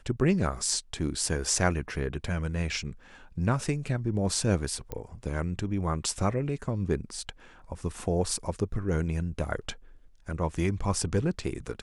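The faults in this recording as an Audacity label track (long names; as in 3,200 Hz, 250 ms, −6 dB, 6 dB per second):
4.920000	4.920000	click −21 dBFS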